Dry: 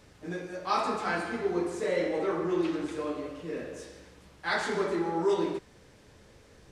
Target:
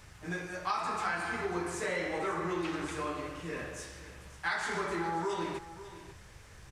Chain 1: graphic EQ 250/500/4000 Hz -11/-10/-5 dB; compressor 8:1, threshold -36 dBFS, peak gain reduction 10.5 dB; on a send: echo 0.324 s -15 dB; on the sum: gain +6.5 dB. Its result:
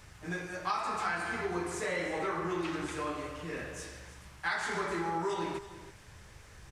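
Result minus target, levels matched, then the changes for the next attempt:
echo 0.216 s early
change: echo 0.54 s -15 dB

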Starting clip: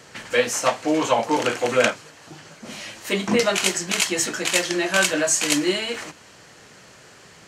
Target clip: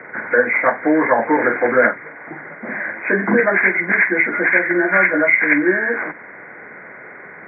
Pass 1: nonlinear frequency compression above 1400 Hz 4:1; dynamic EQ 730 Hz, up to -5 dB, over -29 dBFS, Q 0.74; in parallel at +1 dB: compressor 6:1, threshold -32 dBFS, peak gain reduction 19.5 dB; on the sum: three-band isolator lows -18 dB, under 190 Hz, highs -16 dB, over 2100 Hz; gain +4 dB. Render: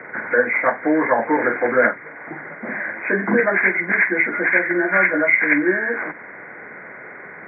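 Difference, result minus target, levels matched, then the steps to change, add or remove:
compressor: peak gain reduction +8 dB
change: compressor 6:1, threshold -22.5 dBFS, peak gain reduction 11.5 dB

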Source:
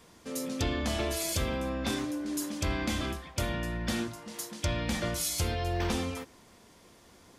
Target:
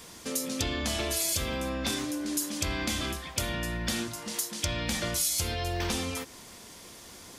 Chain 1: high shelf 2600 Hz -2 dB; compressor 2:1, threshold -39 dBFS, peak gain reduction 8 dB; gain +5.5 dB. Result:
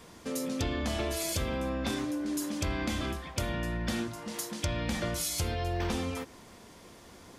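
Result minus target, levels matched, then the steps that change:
4000 Hz band -3.0 dB
change: high shelf 2600 Hz +9.5 dB

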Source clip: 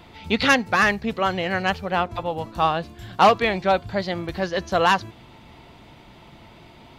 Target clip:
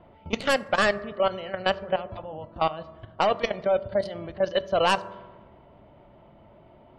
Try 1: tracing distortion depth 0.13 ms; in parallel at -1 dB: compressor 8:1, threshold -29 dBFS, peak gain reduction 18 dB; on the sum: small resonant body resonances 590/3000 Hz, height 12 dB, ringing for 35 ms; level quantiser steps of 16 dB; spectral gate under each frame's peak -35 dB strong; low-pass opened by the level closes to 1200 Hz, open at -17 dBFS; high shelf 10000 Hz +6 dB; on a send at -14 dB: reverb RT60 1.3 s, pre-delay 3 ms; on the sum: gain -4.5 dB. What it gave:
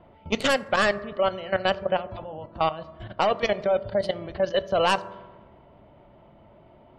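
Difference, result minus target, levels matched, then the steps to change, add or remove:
compressor: peak gain reduction -7 dB
change: compressor 8:1, threshold -37 dBFS, peak gain reduction 25 dB

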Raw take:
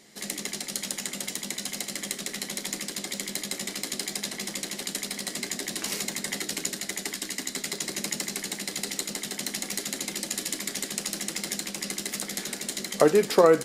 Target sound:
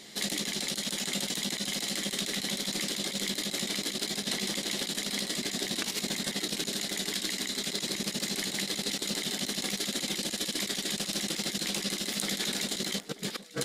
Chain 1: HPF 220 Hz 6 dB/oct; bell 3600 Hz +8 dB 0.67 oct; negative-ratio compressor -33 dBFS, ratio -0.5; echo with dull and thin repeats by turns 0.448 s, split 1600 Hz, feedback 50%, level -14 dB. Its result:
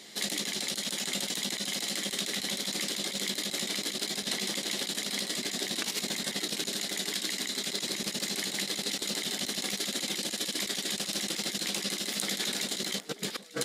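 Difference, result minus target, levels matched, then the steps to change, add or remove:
250 Hz band -2.5 dB
remove: HPF 220 Hz 6 dB/oct

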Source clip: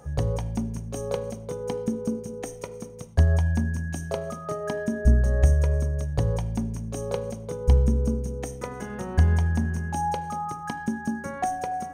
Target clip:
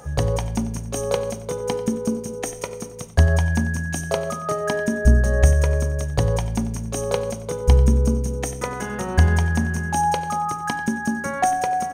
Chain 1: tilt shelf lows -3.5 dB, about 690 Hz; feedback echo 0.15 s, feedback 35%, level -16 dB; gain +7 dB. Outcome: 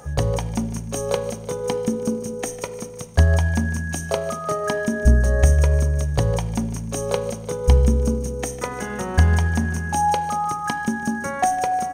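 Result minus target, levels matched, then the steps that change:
echo 58 ms late
change: feedback echo 92 ms, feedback 35%, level -16 dB

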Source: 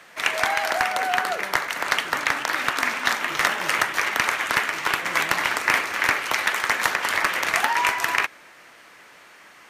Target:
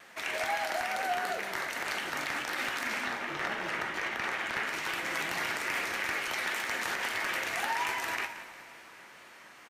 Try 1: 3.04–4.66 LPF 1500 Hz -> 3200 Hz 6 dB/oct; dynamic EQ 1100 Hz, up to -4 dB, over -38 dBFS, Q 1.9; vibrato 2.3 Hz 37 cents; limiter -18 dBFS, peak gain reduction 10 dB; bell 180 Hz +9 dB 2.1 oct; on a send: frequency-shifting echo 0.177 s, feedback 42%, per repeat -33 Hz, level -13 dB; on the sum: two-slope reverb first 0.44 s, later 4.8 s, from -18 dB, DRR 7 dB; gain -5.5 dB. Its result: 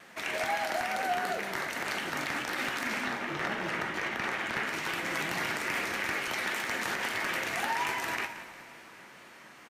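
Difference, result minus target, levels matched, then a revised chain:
250 Hz band +4.5 dB
3.04–4.66 LPF 1500 Hz -> 3200 Hz 6 dB/oct; dynamic EQ 1100 Hz, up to -4 dB, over -38 dBFS, Q 1.9; vibrato 2.3 Hz 37 cents; limiter -18 dBFS, peak gain reduction 10 dB; bell 180 Hz +2 dB 2.1 oct; on a send: frequency-shifting echo 0.177 s, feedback 42%, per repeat -33 Hz, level -13 dB; on the sum: two-slope reverb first 0.44 s, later 4.8 s, from -18 dB, DRR 7 dB; gain -5.5 dB

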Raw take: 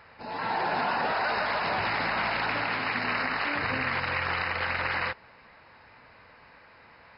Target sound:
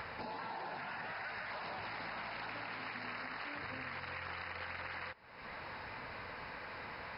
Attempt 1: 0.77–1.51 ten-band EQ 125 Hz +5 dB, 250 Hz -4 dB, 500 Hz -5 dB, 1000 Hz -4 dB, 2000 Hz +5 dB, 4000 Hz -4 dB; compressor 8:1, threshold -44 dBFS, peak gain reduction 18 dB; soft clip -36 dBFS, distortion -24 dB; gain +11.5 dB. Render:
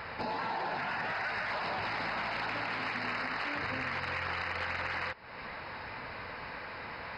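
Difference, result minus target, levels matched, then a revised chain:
compressor: peak gain reduction -9 dB
0.77–1.51 ten-band EQ 125 Hz +5 dB, 250 Hz -4 dB, 500 Hz -5 dB, 1000 Hz -4 dB, 2000 Hz +5 dB, 4000 Hz -4 dB; compressor 8:1, threshold -54.5 dBFS, peak gain reduction 27.5 dB; soft clip -36 dBFS, distortion -41 dB; gain +11.5 dB

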